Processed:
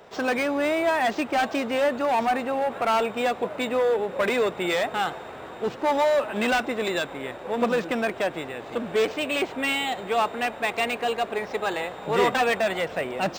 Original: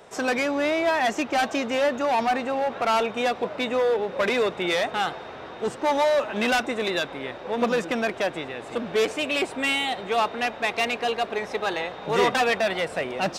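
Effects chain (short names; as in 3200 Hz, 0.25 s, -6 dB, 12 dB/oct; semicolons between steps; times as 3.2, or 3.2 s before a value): decimation joined by straight lines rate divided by 4×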